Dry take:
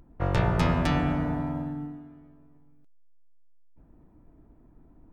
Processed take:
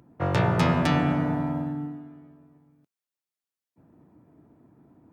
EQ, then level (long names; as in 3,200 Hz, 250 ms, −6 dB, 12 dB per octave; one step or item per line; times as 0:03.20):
high-pass filter 100 Hz 24 dB per octave
+3.0 dB